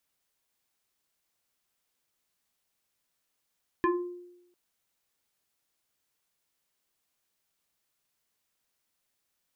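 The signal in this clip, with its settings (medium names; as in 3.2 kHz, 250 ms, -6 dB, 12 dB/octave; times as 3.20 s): FM tone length 0.70 s, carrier 354 Hz, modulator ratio 1.95, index 1.8, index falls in 0.53 s exponential, decay 0.90 s, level -20 dB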